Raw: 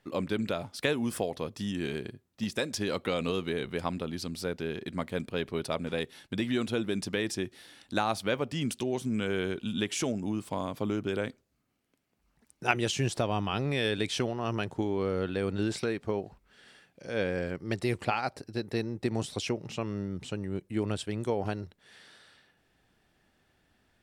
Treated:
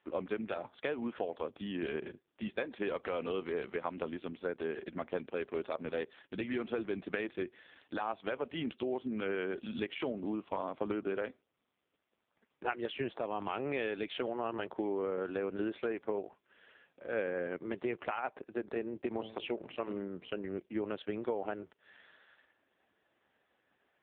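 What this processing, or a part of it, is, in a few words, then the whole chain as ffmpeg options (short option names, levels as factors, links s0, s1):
voicemail: -filter_complex "[0:a]highshelf=f=4200:g=-5,asplit=3[s0][s1][s2];[s0]afade=t=out:st=19.16:d=0.02[s3];[s1]bandreject=f=110.7:t=h:w=4,bandreject=f=221.4:t=h:w=4,bandreject=f=332.1:t=h:w=4,bandreject=f=442.8:t=h:w=4,bandreject=f=553.5:t=h:w=4,bandreject=f=664.2:t=h:w=4,bandreject=f=774.9:t=h:w=4,bandreject=f=885.6:t=h:w=4,bandreject=f=996.3:t=h:w=4,bandreject=f=1107:t=h:w=4,bandreject=f=1217.7:t=h:w=4,bandreject=f=1328.4:t=h:w=4,bandreject=f=1439.1:t=h:w=4,afade=t=in:st=19.16:d=0.02,afade=t=out:st=20.4:d=0.02[s4];[s2]afade=t=in:st=20.4:d=0.02[s5];[s3][s4][s5]amix=inputs=3:normalize=0,highpass=330,lowpass=3300,acompressor=threshold=0.0251:ratio=8,volume=1.33" -ar 8000 -c:a libopencore_amrnb -b:a 4750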